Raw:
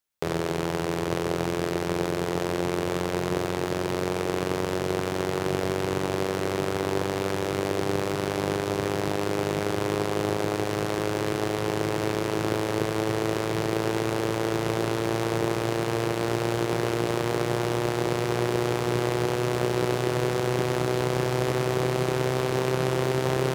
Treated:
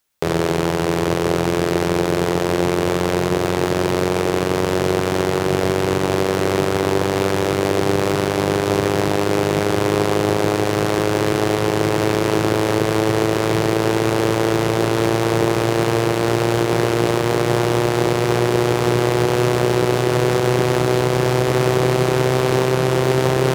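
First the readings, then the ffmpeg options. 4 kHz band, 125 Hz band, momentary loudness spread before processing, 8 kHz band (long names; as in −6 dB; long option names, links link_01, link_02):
+8.0 dB, +8.5 dB, 2 LU, +8.0 dB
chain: -af "acontrast=76,alimiter=limit=-10dB:level=0:latency=1:release=220,volume=5dB"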